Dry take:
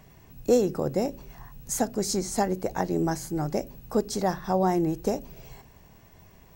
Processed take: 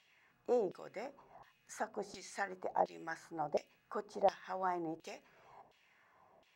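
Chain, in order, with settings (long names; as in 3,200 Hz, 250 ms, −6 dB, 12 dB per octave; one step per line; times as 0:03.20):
auto-filter band-pass saw down 1.4 Hz 610–3,400 Hz
level −1 dB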